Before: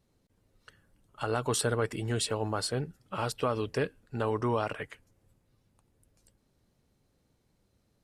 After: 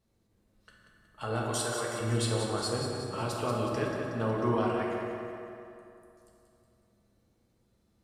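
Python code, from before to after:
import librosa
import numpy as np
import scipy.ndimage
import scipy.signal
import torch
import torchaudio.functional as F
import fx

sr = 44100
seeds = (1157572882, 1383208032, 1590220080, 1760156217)

p1 = fx.highpass(x, sr, hz=700.0, slope=6, at=(1.47, 2.01))
p2 = p1 + fx.echo_feedback(p1, sr, ms=184, feedback_pct=53, wet_db=-7.5, dry=0)
p3 = fx.rev_fdn(p2, sr, rt60_s=2.8, lf_ratio=1.0, hf_ratio=0.45, size_ms=27.0, drr_db=-2.5)
y = F.gain(torch.from_numpy(p3), -5.0).numpy()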